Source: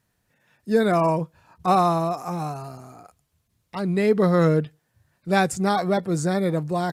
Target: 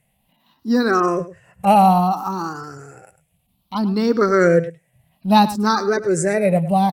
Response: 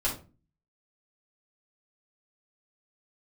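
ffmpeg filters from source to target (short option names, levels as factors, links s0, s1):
-filter_complex "[0:a]afftfilt=real='re*pow(10,17/40*sin(2*PI*(0.5*log(max(b,1)*sr/1024/100)/log(2)-(0.61)*(pts-256)/sr)))':imag='im*pow(10,17/40*sin(2*PI*(0.5*log(max(b,1)*sr/1024/100)/log(2)-(0.61)*(pts-256)/sr)))':win_size=1024:overlap=0.75,asetrate=48091,aresample=44100,atempo=0.917004,asplit=2[s0][s1];[s1]adelay=105,volume=0.178,highshelf=f=4000:g=-2.36[s2];[s0][s2]amix=inputs=2:normalize=0,volume=1.19"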